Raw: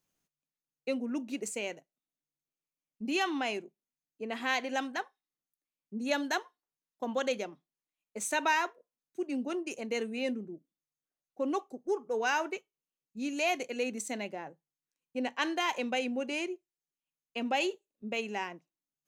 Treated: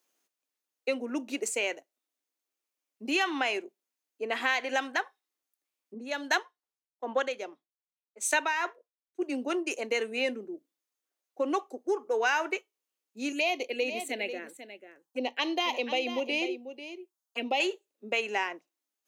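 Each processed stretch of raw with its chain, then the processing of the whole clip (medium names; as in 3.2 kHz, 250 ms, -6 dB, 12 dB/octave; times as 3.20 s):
5.94–9.22 s: treble shelf 11 kHz -6.5 dB + tremolo 2.5 Hz, depth 63% + three bands expanded up and down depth 70%
13.32–17.60 s: touch-sensitive phaser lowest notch 380 Hz, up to 1.6 kHz, full sweep at -30.5 dBFS + delay 492 ms -11.5 dB
whole clip: high-pass 300 Hz 24 dB/octave; dynamic bell 1.9 kHz, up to +5 dB, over -44 dBFS, Q 0.83; compression 2.5:1, threshold -32 dBFS; trim +6 dB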